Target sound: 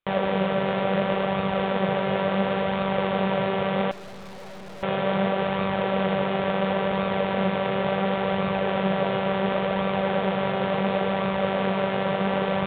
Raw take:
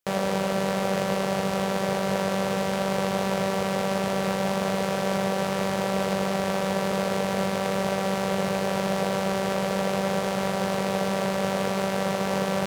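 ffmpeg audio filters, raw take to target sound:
ffmpeg -i in.wav -filter_complex "[0:a]flanger=delay=0.8:depth=6.8:regen=60:speed=0.71:shape=sinusoidal,aresample=8000,aresample=44100,asettb=1/sr,asplit=3[link_01][link_02][link_03];[link_01]atrim=end=3.914[link_04];[link_02]atrim=start=3.91:end=4.83,asetpts=PTS-STARTPTS,afade=type=in:duration=0.004:curve=qsin,afade=type=out:start_time=0.916:duration=0.004:curve=qsin,aeval=exprs='(tanh(200*val(0)+0.75)-tanh(0.75))/200':channel_layout=same[link_05];[link_03]atrim=start=4.826[link_06];[link_04][link_05]acrossfade=duration=0.004:curve1=hsin:curve2=qsin[link_07];[link_07][link_06]acrossfade=duration=0.004:curve1=qsin:curve2=hsin,volume=6dB" out.wav

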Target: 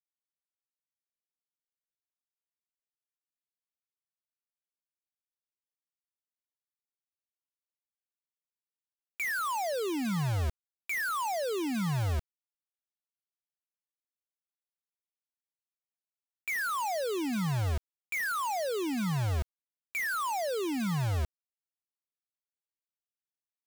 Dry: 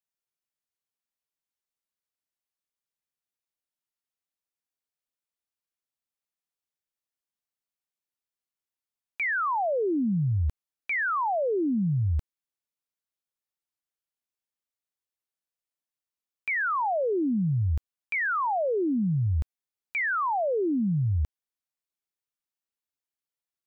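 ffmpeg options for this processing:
ffmpeg -i in.wav -filter_complex "[0:a]asplit=2[link_01][link_02];[link_02]alimiter=level_in=8dB:limit=-24dB:level=0:latency=1,volume=-8dB,volume=-1dB[link_03];[link_01][link_03]amix=inputs=2:normalize=0,acrusher=bits=4:mix=0:aa=0.000001,volume=-7dB" out.wav

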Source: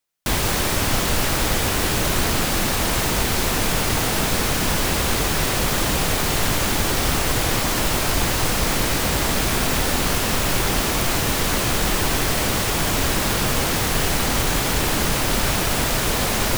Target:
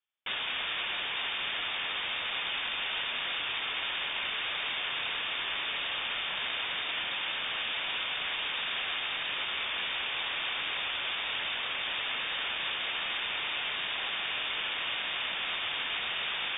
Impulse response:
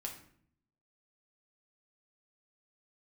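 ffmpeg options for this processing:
-filter_complex "[0:a]highpass=frequency=71:width=0.5412,highpass=frequency=71:width=1.3066,highshelf=frequency=2100:gain=-11,bandreject=frequency=1700:width=27,acrossover=split=780|2600[link_01][link_02][link_03];[link_01]aeval=exprs='0.0299*(abs(mod(val(0)/0.0299+3,4)-2)-1)':channel_layout=same[link_04];[link_02]alimiter=level_in=4.5dB:limit=-24dB:level=0:latency=1,volume=-4.5dB[link_05];[link_04][link_05][link_03]amix=inputs=3:normalize=0,lowpass=frequency=3100:width_type=q:width=0.5098,lowpass=frequency=3100:width_type=q:width=0.6013,lowpass=frequency=3100:width_type=q:width=0.9,lowpass=frequency=3100:width_type=q:width=2.563,afreqshift=-3700,volume=-1.5dB"

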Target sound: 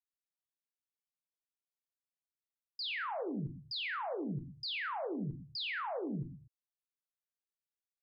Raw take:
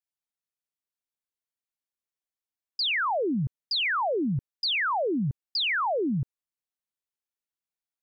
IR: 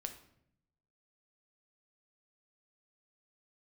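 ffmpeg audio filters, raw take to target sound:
-filter_complex "[1:a]atrim=start_sample=2205,afade=type=out:start_time=0.32:duration=0.01,atrim=end_sample=14553,asetrate=48510,aresample=44100[link_01];[0:a][link_01]afir=irnorm=-1:irlink=0,volume=-8.5dB"

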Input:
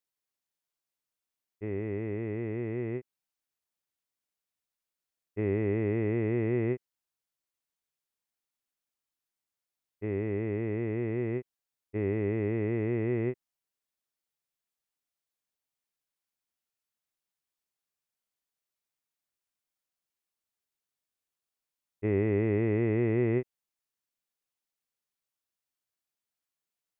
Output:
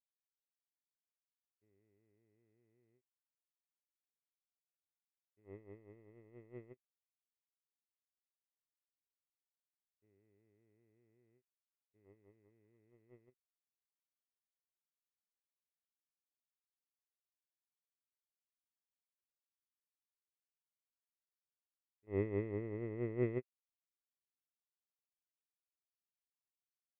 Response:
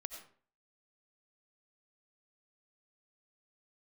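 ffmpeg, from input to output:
-filter_complex "[0:a]asettb=1/sr,asplit=3[link_01][link_02][link_03];[link_01]atrim=end=22.514[link_04];[link_02]atrim=start=22.51:end=23.23,asetpts=PTS-STARTPTS,afade=type=in:duration=0.004:curve=qsin,afade=type=out:start_time=0.716:duration=0.004:curve=qsin,acrossover=split=2600[link_05][link_06];[link_06]acompressor=threshold=-59dB:ratio=4:attack=1:release=60[link_07];[link_05][link_07]amix=inputs=2:normalize=0[link_08];[link_03]atrim=start=23.226[link_09];[link_04][link_08]acrossfade=duration=0.004:curve1=hsin:curve2=qsin[link_10];[link_10][link_09]acrossfade=duration=0.004:curve1=qsin:curve2=hsin,agate=range=-54dB:threshold=-22dB:ratio=16:detection=peak,volume=10.5dB"

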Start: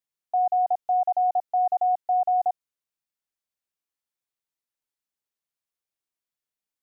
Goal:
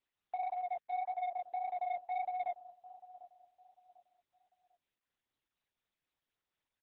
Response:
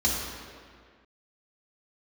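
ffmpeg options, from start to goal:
-filter_complex "[0:a]flanger=delay=15.5:depth=7.2:speed=1.7,alimiter=limit=-21dB:level=0:latency=1:release=301,acompressor=threshold=-29dB:ratio=4,tremolo=f=4.1:d=0.36,asettb=1/sr,asplit=3[link_01][link_02][link_03];[link_01]atrim=end=0.434[link_04];[link_02]atrim=start=0.43:end=1.81,asetpts=PTS-STARTPTS,afade=type=in:duration=0.004:curve=qsin,afade=type=out:start_time=1.376:duration=0.004:curve=qsin,highpass=500[link_05];[link_03]atrim=start=1.806[link_06];[link_04][link_05]acrossfade=duration=0.004:curve1=hsin:curve2=qsin[link_07];[link_07][link_06]acrossfade=duration=0.004:curve1=qsin:curve2=hsin,asplit=2[link_08][link_09];[link_09]adelay=747,lowpass=frequency=830:poles=1,volume=-19dB,asplit=2[link_10][link_11];[link_11]adelay=747,lowpass=frequency=830:poles=1,volume=0.42,asplit=2[link_12][link_13];[link_13]adelay=747,lowpass=frequency=830:poles=1,volume=0.42[link_14];[link_08][link_10][link_12][link_14]amix=inputs=4:normalize=0,asoftclip=type=tanh:threshold=-31dB" -ar 48000 -c:a libopus -b:a 6k

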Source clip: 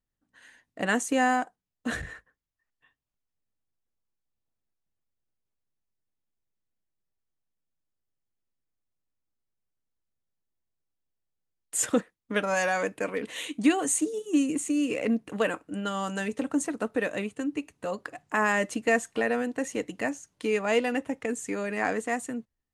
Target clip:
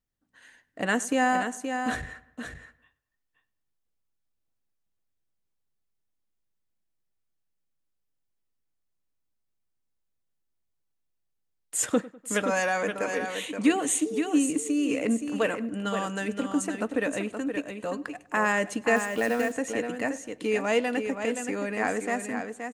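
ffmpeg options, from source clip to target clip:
ffmpeg -i in.wav -filter_complex "[0:a]asplit=2[link_01][link_02];[link_02]aecho=0:1:523:0.447[link_03];[link_01][link_03]amix=inputs=2:normalize=0,asettb=1/sr,asplit=3[link_04][link_05][link_06];[link_04]atrim=end=18.964[link_07];[link_05]atrim=start=18.96:end=19.52,asetpts=PTS-STARTPTS,afade=type=in:duration=0.004:curve=qsin,afade=type=out:start_time=0.556:duration=0.004:curve=qsin,acrusher=bits=5:mode=log:mix=0:aa=0.000001[link_08];[link_06]atrim=start=19.516[link_09];[link_07][link_08]acrossfade=duration=0.004:curve1=hsin:curve2=qsin[link_10];[link_10][link_09]acrossfade=duration=0.004:curve1=qsin:curve2=hsin,asplit=2[link_11][link_12];[link_12]adelay=100,lowpass=frequency=3200:poles=1,volume=-20dB,asplit=2[link_13][link_14];[link_14]adelay=100,lowpass=frequency=3200:poles=1,volume=0.48,asplit=2[link_15][link_16];[link_16]adelay=100,lowpass=frequency=3200:poles=1,volume=0.48,asplit=2[link_17][link_18];[link_18]adelay=100,lowpass=frequency=3200:poles=1,volume=0.48[link_19];[link_13][link_15][link_17][link_19]amix=inputs=4:normalize=0[link_20];[link_11][link_20]amix=inputs=2:normalize=0" out.wav

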